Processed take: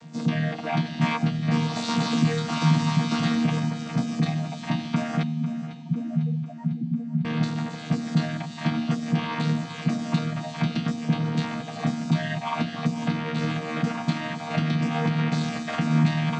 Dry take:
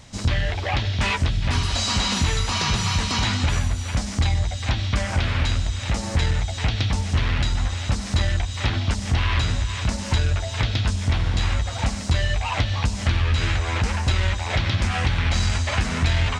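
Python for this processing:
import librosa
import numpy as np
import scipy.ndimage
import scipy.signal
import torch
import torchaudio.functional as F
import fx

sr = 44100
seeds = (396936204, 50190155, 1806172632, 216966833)

y = fx.chord_vocoder(x, sr, chord='bare fifth', root=51)
y = fx.spec_topn(y, sr, count=4, at=(5.23, 7.25))
y = fx.peak_eq(y, sr, hz=170.0, db=9.5, octaves=0.25)
y = fx.echo_feedback(y, sr, ms=499, feedback_pct=59, wet_db=-14.5)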